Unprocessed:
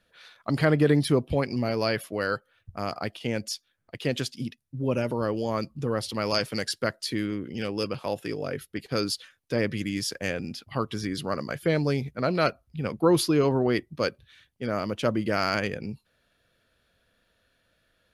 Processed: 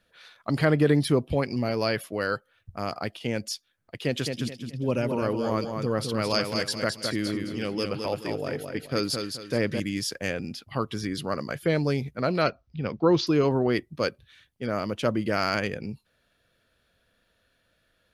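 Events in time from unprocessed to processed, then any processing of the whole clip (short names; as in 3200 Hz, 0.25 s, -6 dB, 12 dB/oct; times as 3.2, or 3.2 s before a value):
3.97–9.8 feedback echo 0.214 s, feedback 33%, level -5.5 dB
12.42–13.27 Chebyshev low-pass 6000 Hz, order 5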